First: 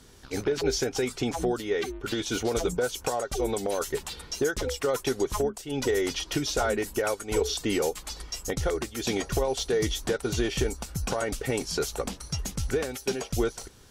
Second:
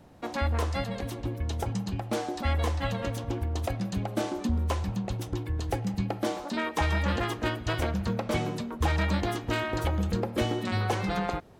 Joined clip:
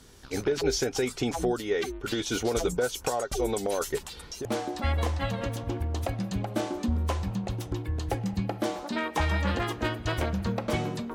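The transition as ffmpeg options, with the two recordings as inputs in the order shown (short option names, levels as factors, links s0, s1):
-filter_complex "[0:a]asettb=1/sr,asplit=3[s0][s1][s2];[s0]atrim=end=3.984[s3];[s1]atrim=start=3.98:end=4.45,asetpts=PTS-STARTPTS,afade=t=in:d=0.004:c=qsin,afade=t=out:st=0.466:d=0.004:c=qsin,acompressor=threshold=0.0112:ratio=2:attack=3.2:release=140:knee=1:detection=peak[s4];[s2]atrim=start=4.446[s5];[s3][s4]acrossfade=d=0.004:c1=hsin:c2=qsin[s6];[s6][s5]acrossfade=d=0.004:c1=qsin:c2=hsin,apad=whole_dur=11.14,atrim=end=11.14,atrim=end=4.452[s7];[1:a]atrim=start=2.058:end=8.75[s8];[s7][s8]acrossfade=d=0.004:c1=hsin:c2=hsin"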